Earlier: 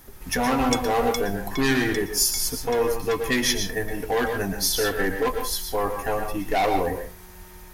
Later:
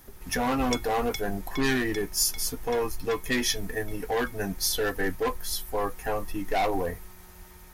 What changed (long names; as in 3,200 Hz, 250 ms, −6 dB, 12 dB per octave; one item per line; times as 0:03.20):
background: add high-shelf EQ 5,600 Hz −9.5 dB
reverb: off